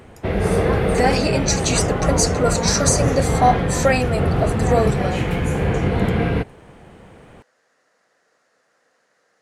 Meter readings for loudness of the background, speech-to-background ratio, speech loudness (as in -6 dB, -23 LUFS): -20.5 LUFS, -0.5 dB, -21.0 LUFS